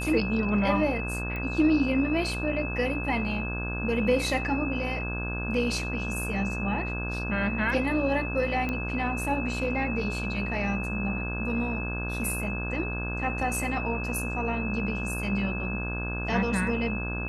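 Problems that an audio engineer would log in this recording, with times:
mains buzz 60 Hz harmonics 28 −33 dBFS
whistle 2,600 Hz −34 dBFS
0:01.36: click −23 dBFS
0:08.69: click −18 dBFS

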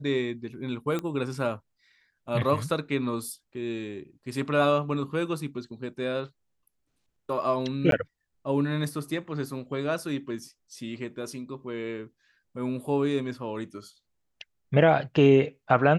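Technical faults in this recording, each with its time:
0:00.99: click −18 dBFS
0:07.91–0:07.92: drop-out 12 ms

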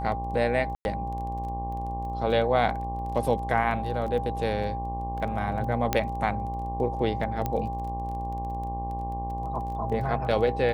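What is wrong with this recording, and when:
mains buzz 60 Hz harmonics 19 −34 dBFS
surface crackle 15 per second −36 dBFS
whistle 800 Hz −32 dBFS
0:00.75–0:00.85: drop-out 101 ms
0:05.93: click −8 dBFS
0:07.46: click −15 dBFS

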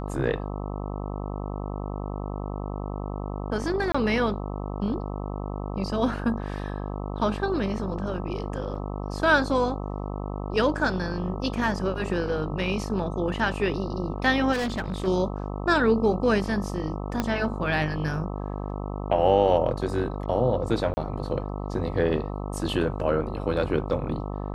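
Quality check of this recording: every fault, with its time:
mains buzz 50 Hz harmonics 26 −32 dBFS
0:03.92–0:03.94: drop-out 25 ms
0:08.75: drop-out 4.1 ms
0:14.52–0:15.08: clipping −24.5 dBFS
0:17.20: click −11 dBFS
0:20.94–0:20.97: drop-out 30 ms

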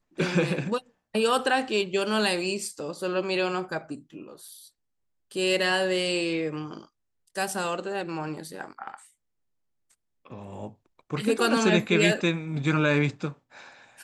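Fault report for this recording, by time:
0:04.48: drop-out 3.2 ms

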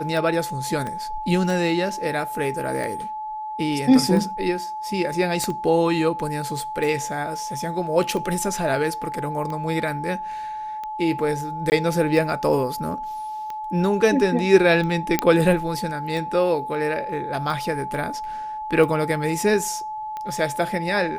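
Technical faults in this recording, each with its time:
scratch tick 45 rpm
whistle 860 Hz −28 dBFS
0:00.87: click −18 dBFS
0:05.44: click −13 dBFS
0:11.70–0:11.72: drop-out 19 ms
0:15.19: click −3 dBFS

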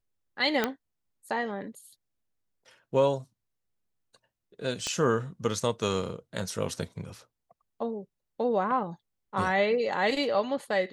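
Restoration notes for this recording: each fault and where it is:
0:00.64: click −11 dBFS
0:04.87: click −18 dBFS

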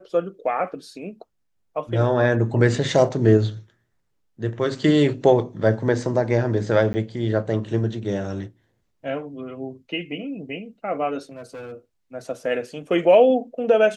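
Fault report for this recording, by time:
0:06.93–0:06.94: drop-out 10 ms
0:11.29–0:11.73: clipping −32 dBFS

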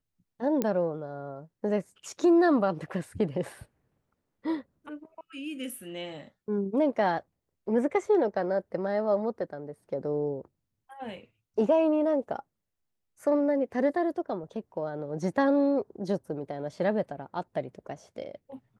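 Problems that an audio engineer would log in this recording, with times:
0:00.62: click −14 dBFS

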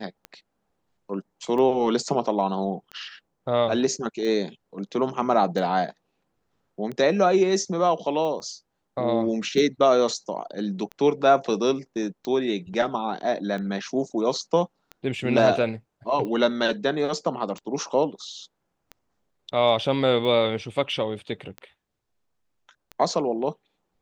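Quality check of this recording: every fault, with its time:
scratch tick 45 rpm −22 dBFS
0:08.40: drop-out 3.1 ms

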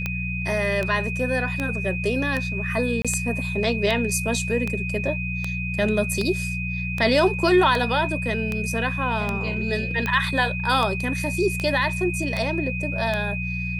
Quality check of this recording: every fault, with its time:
mains hum 60 Hz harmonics 3 −29 dBFS
scratch tick 78 rpm −12 dBFS
whistle 2,500 Hz −29 dBFS
0:03.02–0:03.05: drop-out 26 ms

